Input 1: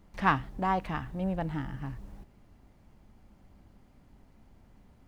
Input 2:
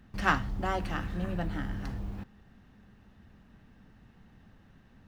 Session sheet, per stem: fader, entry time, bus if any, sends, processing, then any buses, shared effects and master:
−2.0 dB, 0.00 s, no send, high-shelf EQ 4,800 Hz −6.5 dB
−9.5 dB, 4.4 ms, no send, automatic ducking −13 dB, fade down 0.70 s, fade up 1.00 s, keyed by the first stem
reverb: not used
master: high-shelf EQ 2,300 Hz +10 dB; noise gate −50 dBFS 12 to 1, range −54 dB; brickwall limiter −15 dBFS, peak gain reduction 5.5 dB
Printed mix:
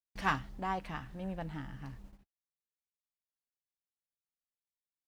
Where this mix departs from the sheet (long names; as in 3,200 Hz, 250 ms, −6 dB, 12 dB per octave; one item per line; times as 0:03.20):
stem 1 −2.0 dB → −8.5 dB
stem 2: polarity flipped